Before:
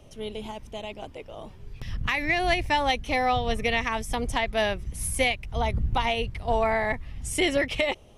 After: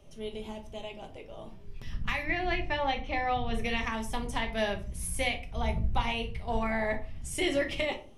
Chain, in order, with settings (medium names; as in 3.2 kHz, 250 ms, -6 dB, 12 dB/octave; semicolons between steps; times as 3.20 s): 2.23–3.54 s: low-pass 3.3 kHz 12 dB/octave; simulated room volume 240 m³, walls furnished, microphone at 1.2 m; trim -7 dB